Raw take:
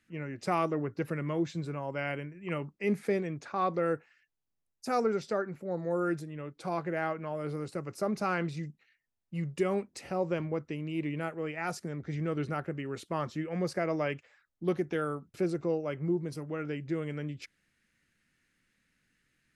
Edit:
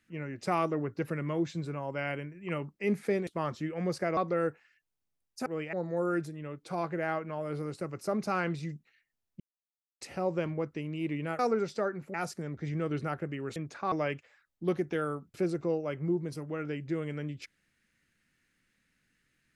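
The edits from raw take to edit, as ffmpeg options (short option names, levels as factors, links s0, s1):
-filter_complex "[0:a]asplit=11[s0][s1][s2][s3][s4][s5][s6][s7][s8][s9][s10];[s0]atrim=end=3.272[s11];[s1]atrim=start=13.018:end=13.922[s12];[s2]atrim=start=3.628:end=4.922[s13];[s3]atrim=start=11.328:end=11.602[s14];[s4]atrim=start=5.668:end=9.34,asetpts=PTS-STARTPTS,afade=t=out:st=3.668:d=0.004:c=hsin[s15];[s5]atrim=start=9.34:end=9.95,asetpts=PTS-STARTPTS,volume=0[s16];[s6]atrim=start=9.95:end=11.332,asetpts=PTS-STARTPTS,afade=t=in:d=0.004:c=hsin[s17];[s7]atrim=start=4.918:end=5.672[s18];[s8]atrim=start=11.598:end=13.022[s19];[s9]atrim=start=3.268:end=3.632[s20];[s10]atrim=start=13.918[s21];[s11][s12]acrossfade=d=0.004:c1=hsin:c2=hsin[s22];[s22][s13]acrossfade=d=0.004:c1=hsin:c2=hsin[s23];[s23][s14]acrossfade=d=0.004:c1=hsin:c2=hsin[s24];[s15][s16][s17]concat=n=3:v=0:a=1[s25];[s24][s25]acrossfade=d=0.004:c1=hsin:c2=hsin[s26];[s26][s18]acrossfade=d=0.004:c1=hsin:c2=hsin[s27];[s27][s19]acrossfade=d=0.004:c1=hsin:c2=hsin[s28];[s28][s20]acrossfade=d=0.004:c1=hsin:c2=hsin[s29];[s29][s21]acrossfade=d=0.004:c1=hsin:c2=hsin"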